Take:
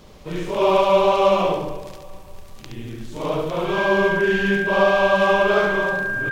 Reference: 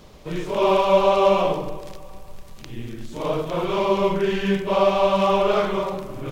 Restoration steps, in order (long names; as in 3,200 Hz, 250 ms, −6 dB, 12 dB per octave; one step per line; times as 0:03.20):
notch filter 1,600 Hz, Q 30
echo removal 70 ms −5 dB